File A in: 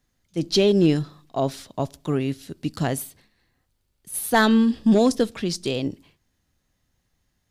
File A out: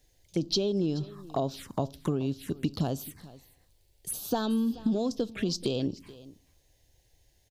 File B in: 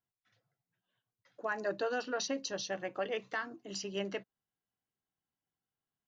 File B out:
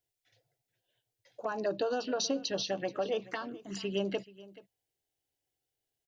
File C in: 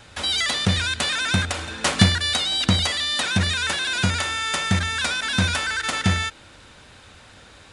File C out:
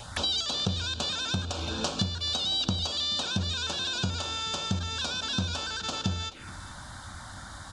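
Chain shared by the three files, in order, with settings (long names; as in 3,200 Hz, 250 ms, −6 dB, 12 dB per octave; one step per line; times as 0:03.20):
downward compressor 8 to 1, threshold −33 dBFS
phaser swept by the level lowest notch 200 Hz, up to 2,000 Hz, full sweep at −34.5 dBFS
on a send: single-tap delay 430 ms −19.5 dB
on the sum: level +7.5 dB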